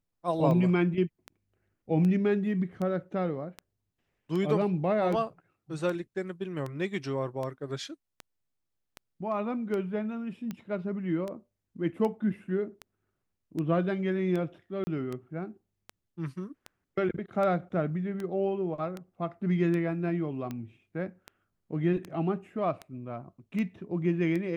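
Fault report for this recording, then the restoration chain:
tick 78 rpm -23 dBFS
14.84–14.87 s: dropout 30 ms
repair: de-click; interpolate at 14.84 s, 30 ms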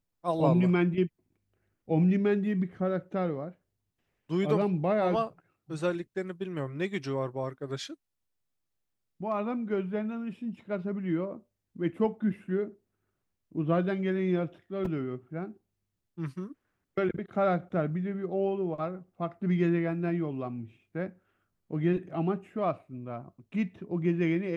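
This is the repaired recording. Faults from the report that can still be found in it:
nothing left

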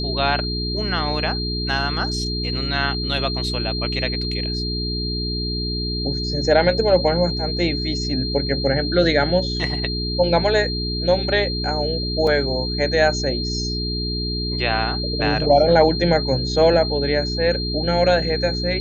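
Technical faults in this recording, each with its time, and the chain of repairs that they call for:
hum 60 Hz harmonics 7 -26 dBFS
whine 4.2 kHz -26 dBFS
12.27 s: dropout 2.9 ms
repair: band-stop 4.2 kHz, Q 30; de-hum 60 Hz, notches 7; interpolate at 12.27 s, 2.9 ms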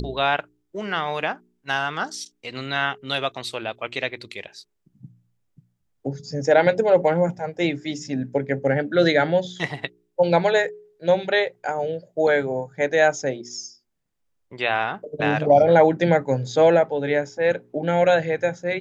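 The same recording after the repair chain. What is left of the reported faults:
nothing left

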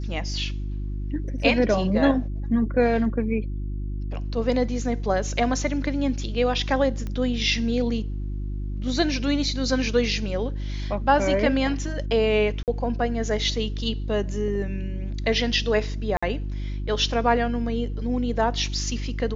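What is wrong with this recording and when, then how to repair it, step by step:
hum 50 Hz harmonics 7 -29 dBFS
7.07 s: pop -20 dBFS
12.63–12.68 s: dropout 48 ms
16.17–16.23 s: dropout 55 ms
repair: de-click; de-hum 50 Hz, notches 7; interpolate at 12.63 s, 48 ms; interpolate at 16.17 s, 55 ms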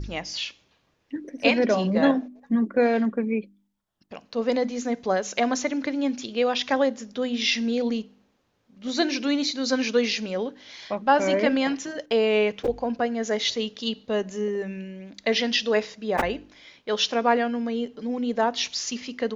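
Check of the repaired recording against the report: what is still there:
7.07 s: pop

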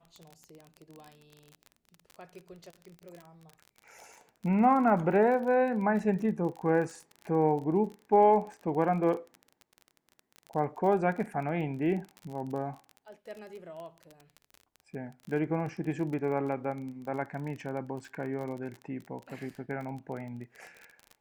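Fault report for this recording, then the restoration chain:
crackle 30 per s -37 dBFS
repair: de-click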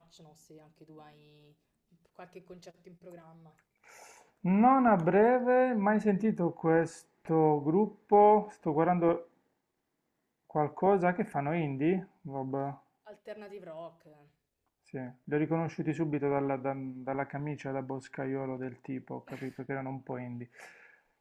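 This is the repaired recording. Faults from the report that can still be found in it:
nothing left

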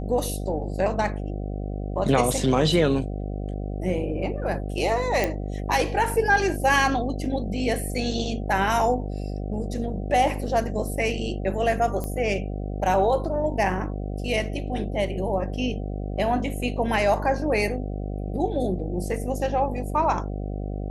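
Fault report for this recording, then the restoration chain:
buzz 50 Hz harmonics 15 -30 dBFS
5.24 s: pop -10 dBFS
12.04 s: pop -17 dBFS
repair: de-click; de-hum 50 Hz, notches 15

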